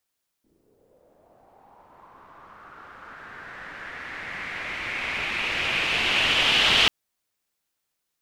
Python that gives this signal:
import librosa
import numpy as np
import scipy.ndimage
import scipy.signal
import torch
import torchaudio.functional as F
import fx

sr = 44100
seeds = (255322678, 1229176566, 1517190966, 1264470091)

y = fx.riser_noise(sr, seeds[0], length_s=6.44, colour='white', kind='lowpass', start_hz=290.0, end_hz=3100.0, q=3.8, swell_db=38, law='linear')